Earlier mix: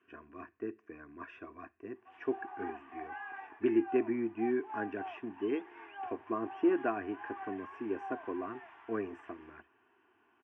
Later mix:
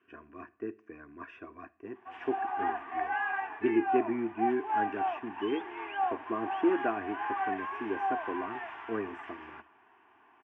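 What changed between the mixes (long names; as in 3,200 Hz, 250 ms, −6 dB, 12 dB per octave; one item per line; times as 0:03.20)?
background +10.5 dB
reverb: on, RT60 0.55 s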